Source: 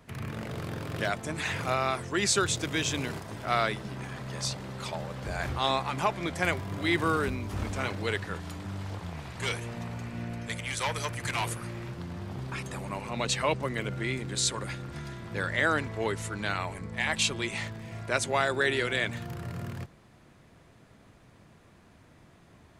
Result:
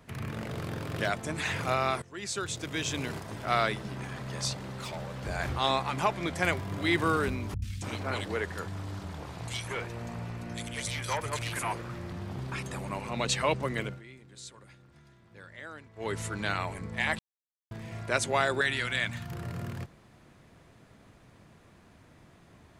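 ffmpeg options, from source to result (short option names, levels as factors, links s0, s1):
-filter_complex "[0:a]asettb=1/sr,asplit=3[s0][s1][s2];[s0]atrim=end=4.534[s3];[s1]atrim=start=4.53:end=5.24,asetpts=PTS-STARTPTS,afade=t=in:d=0.004:c=qsin,afade=t=out:st=0.706:d=0.004:c=qsin,volume=50.1,asoftclip=hard,volume=0.02[s4];[s2]atrim=start=5.236[s5];[s3][s4]acrossfade=d=0.004:c1=hsin:c2=qsin[s6];[s6][s5]acrossfade=d=0.004:c1=qsin:c2=hsin,asettb=1/sr,asplit=3[s7][s8][s9];[s7]atrim=end=7.544[s10];[s8]atrim=start=7.54:end=12.12,asetpts=PTS-STARTPTS,afade=t=in:d=0.004:c=qsin,afade=t=out:st=4.576:d=0.004:c=qsin,acrossover=split=170|2400[s11][s12][s13];[s13]adelay=80[s14];[s12]adelay=280[s15];[s11][s15][s14]amix=inputs=3:normalize=0,atrim=end_sample=201978[s16];[s9]atrim=start=12.116[s17];[s10][s16]acrossfade=d=0.004:c1=hsin:c2=qsin[s18];[s18][s17]acrossfade=d=0.004:c1=qsin:c2=hsin,asettb=1/sr,asplit=3[s19][s20][s21];[s19]atrim=end=18.614[s22];[s20]atrim=start=18.61:end=19.32,asetpts=PTS-STARTPTS,afade=t=in:d=0.004:c=qsin,afade=t=out:st=0.706:d=0.004:c=qsin,equalizer=f=420:w=1.5:g=-13.5[s23];[s21]atrim=start=19.316[s24];[s22][s23]acrossfade=d=0.004:c1=hsin:c2=qsin[s25];[s25][s24]acrossfade=d=0.004:c1=qsin:c2=hsin,asplit=6[s26][s27][s28][s29][s30][s31];[s26]atrim=end=2.02,asetpts=PTS-STARTPTS,afade=t=out:st=2.016:d=0.004:c=hsin:silence=0.125893[s32];[s27]atrim=start=2.02:end=14.02,asetpts=PTS-STARTPTS,afade=t=in:d=1.23:silence=0.125893,afade=t=out:st=11.79:d=0.21:silence=0.11885[s33];[s28]atrim=start=14.02:end=15.95,asetpts=PTS-STARTPTS,volume=0.119[s34];[s29]atrim=start=15.95:end=17.19,asetpts=PTS-STARTPTS,afade=t=in:d=0.21:silence=0.11885,afade=t=out:st=1.236:d=0.004:c=hsin[s35];[s30]atrim=start=17.19:end=17.71,asetpts=PTS-STARTPTS,volume=0[s36];[s31]atrim=start=17.71,asetpts=PTS-STARTPTS,afade=t=in:d=0.004:c=hsin[s37];[s32][s33][s34][s35][s36][s37]concat=n=6:v=0:a=1"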